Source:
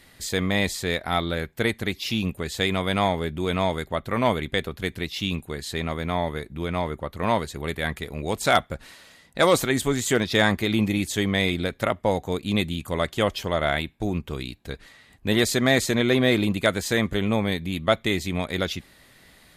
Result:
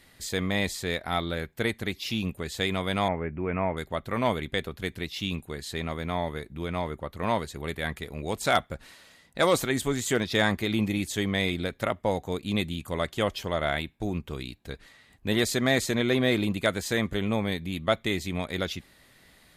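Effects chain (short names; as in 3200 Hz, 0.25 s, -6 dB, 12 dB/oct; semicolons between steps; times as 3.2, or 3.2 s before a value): 3.08–3.77 steep low-pass 2600 Hz 72 dB/oct; gain -4 dB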